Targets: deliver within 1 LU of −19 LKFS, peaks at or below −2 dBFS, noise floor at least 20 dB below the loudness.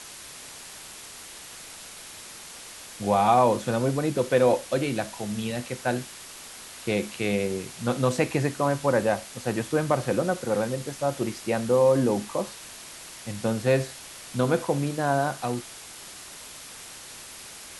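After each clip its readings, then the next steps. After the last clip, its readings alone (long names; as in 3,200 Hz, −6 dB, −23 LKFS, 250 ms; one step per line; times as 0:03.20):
background noise floor −43 dBFS; target noise floor −46 dBFS; integrated loudness −26.0 LKFS; sample peak −8.0 dBFS; target loudness −19.0 LKFS
→ broadband denoise 6 dB, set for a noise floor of −43 dBFS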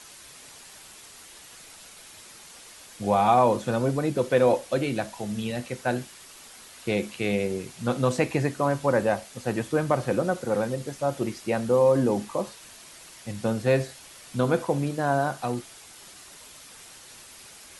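background noise floor −48 dBFS; integrated loudness −26.0 LKFS; sample peak −8.0 dBFS; target loudness −19.0 LKFS
→ level +7 dB
brickwall limiter −2 dBFS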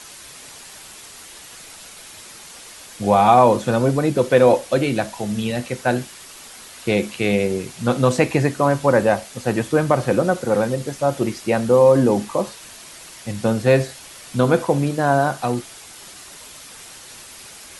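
integrated loudness −19.0 LKFS; sample peak −2.0 dBFS; background noise floor −41 dBFS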